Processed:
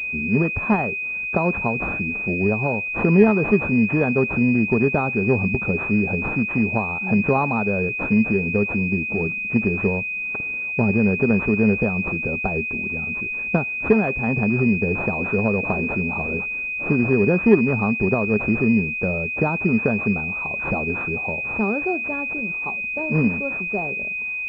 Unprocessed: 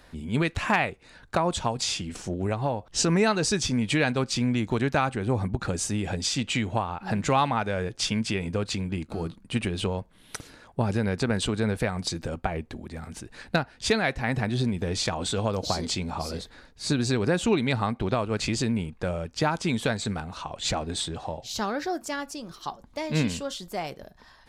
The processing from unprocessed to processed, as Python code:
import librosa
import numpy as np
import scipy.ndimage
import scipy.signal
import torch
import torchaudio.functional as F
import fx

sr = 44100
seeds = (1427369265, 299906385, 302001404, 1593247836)

y = fx.small_body(x, sr, hz=(210.0, 400.0), ring_ms=45, db=9)
y = fx.pwm(y, sr, carrier_hz=2500.0)
y = y * 10.0 ** (2.0 / 20.0)